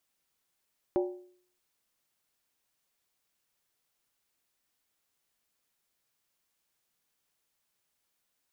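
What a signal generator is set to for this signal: skin hit, lowest mode 361 Hz, decay 0.56 s, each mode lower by 6.5 dB, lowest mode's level -22.5 dB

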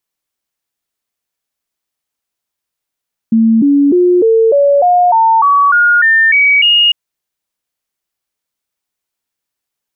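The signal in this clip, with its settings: stepped sine 225 Hz up, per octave 3, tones 12, 0.30 s, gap 0.00 s -5.5 dBFS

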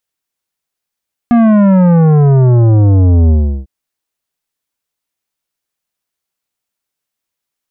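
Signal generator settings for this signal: sub drop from 240 Hz, over 2.35 s, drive 12 dB, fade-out 0.36 s, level -6 dB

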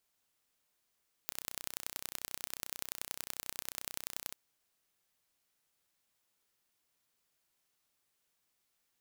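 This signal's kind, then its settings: pulse train 31.3/s, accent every 3, -9.5 dBFS 3.06 s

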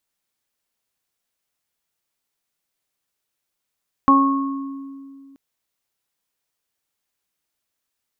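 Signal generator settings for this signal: additive tone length 1.28 s, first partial 274 Hz, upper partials -14.5/-10/3.5 dB, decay 2.45 s, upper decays 0.79/0.48/1.18 s, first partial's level -13 dB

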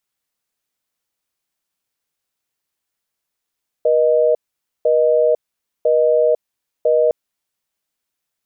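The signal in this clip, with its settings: call progress tone busy tone, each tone -14 dBFS 3.26 s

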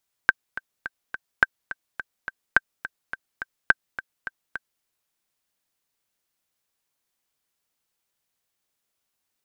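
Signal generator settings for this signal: metronome 211 bpm, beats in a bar 4, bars 4, 1560 Hz, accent 15.5 dB -1.5 dBFS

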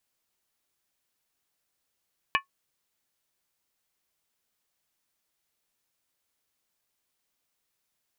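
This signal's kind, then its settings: skin hit, lowest mode 1100 Hz, modes 5, decay 0.12 s, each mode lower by 1 dB, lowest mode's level -19.5 dB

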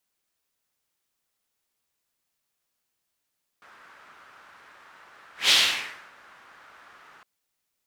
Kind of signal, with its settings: whoosh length 3.61 s, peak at 1.88, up 0.16 s, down 0.66 s, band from 1400 Hz, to 3600 Hz, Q 2.2, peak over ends 34 dB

